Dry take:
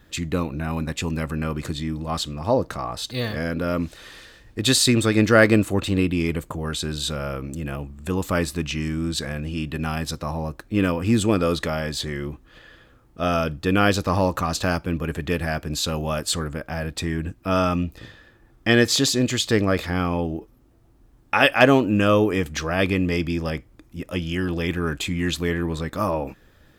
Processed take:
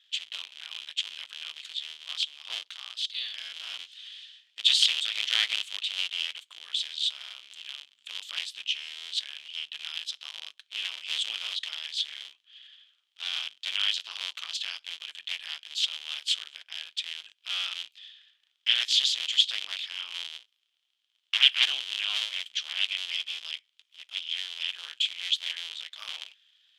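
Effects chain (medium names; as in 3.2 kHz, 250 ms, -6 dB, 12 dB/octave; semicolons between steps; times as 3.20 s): cycle switcher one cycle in 3, inverted; ladder band-pass 3.4 kHz, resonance 75%; trim +5.5 dB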